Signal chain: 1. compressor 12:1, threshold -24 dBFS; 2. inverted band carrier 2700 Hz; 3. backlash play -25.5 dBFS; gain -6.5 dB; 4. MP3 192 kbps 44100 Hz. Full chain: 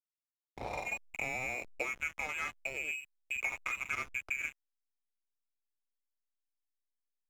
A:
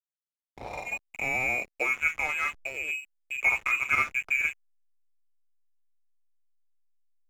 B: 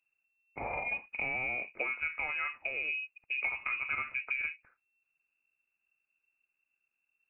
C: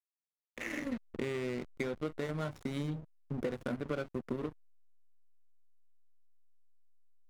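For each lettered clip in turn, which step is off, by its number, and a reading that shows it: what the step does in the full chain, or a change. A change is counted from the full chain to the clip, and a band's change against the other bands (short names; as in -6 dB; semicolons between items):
1, mean gain reduction 5.5 dB; 3, distortion -4 dB; 2, 250 Hz band +19.5 dB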